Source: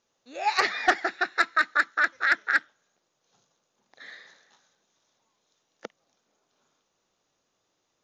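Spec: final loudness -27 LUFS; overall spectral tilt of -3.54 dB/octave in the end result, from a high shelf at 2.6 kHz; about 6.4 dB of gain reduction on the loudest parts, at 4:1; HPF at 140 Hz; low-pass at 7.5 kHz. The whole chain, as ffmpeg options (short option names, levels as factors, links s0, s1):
-af "highpass=140,lowpass=7500,highshelf=f=2600:g=3.5,acompressor=threshold=0.0708:ratio=4,volume=1.12"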